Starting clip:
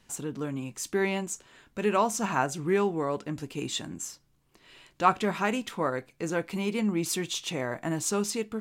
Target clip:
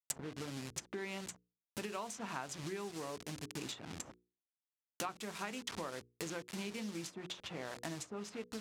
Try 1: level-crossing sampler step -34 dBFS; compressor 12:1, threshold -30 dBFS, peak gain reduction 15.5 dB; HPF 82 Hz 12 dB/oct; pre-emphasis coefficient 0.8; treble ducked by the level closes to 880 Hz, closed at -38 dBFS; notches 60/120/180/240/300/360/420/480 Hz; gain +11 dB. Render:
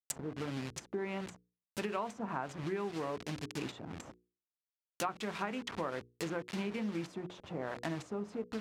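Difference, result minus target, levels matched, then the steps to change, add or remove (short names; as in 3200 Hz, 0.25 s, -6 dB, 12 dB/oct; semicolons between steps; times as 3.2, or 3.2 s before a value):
compressor: peak gain reduction -6 dB
change: compressor 12:1, threshold -36.5 dBFS, peak gain reduction 21.5 dB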